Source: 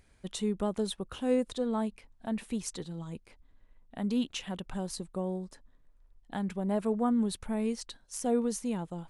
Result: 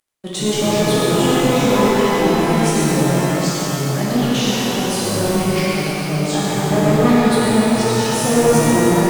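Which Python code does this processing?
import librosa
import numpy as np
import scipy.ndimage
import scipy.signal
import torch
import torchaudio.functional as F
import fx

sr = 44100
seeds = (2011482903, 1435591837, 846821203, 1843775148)

p1 = scipy.signal.sosfilt(scipy.signal.butter(2, 190.0, 'highpass', fs=sr, output='sos'), x)
p2 = fx.level_steps(p1, sr, step_db=14)
p3 = p1 + F.gain(torch.from_numpy(p2), -3.0).numpy()
p4 = fx.echo_pitch(p3, sr, ms=84, semitones=-4, count=2, db_per_echo=-3.0)
p5 = np.where(np.abs(p4) >= 10.0 ** (-51.5 / 20.0), p4, 0.0)
p6 = p5 + fx.echo_single(p5, sr, ms=125, db=-8.5, dry=0)
p7 = fx.leveller(p6, sr, passes=3)
p8 = fx.rev_shimmer(p7, sr, seeds[0], rt60_s=3.3, semitones=12, shimmer_db=-8, drr_db=-8.5)
y = F.gain(torch.from_numpy(p8), -4.0).numpy()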